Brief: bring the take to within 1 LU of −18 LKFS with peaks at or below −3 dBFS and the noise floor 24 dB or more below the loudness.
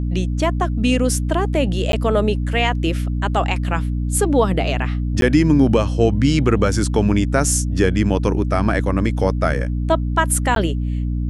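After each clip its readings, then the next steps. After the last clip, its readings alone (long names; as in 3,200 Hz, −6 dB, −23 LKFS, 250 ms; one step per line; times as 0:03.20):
number of dropouts 3; longest dropout 12 ms; mains hum 60 Hz; hum harmonics up to 300 Hz; level of the hum −19 dBFS; integrated loudness −18.5 LKFS; sample peak −2.0 dBFS; target loudness −18.0 LKFS
→ repair the gap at 0:01.92/0:05.21/0:10.55, 12 ms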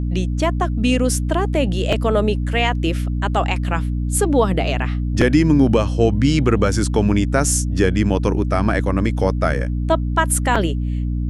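number of dropouts 0; mains hum 60 Hz; hum harmonics up to 300 Hz; level of the hum −19 dBFS
→ mains-hum notches 60/120/180/240/300 Hz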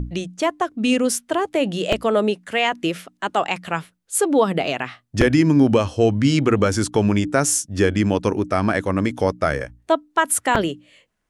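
mains hum none found; integrated loudness −20.5 LKFS; sample peak −1.5 dBFS; target loudness −18.0 LKFS
→ level +2.5 dB
brickwall limiter −3 dBFS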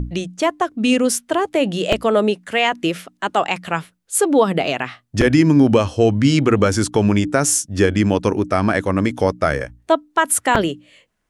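integrated loudness −18.0 LKFS; sample peak −3.0 dBFS; background noise floor −65 dBFS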